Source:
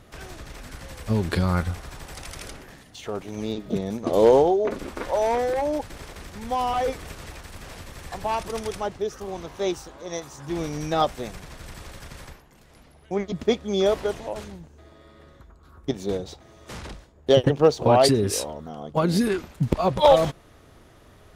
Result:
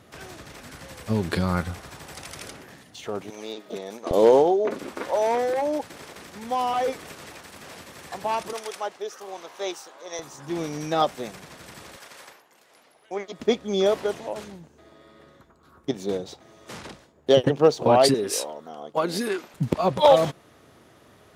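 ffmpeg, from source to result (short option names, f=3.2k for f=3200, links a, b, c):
-af "asetnsamples=n=441:p=0,asendcmd='3.3 highpass f 480;4.11 highpass f 180;8.53 highpass f 530;10.19 highpass f 160;11.96 highpass f 460;13.4 highpass f 150;18.14 highpass f 350;19.54 highpass f 130',highpass=110"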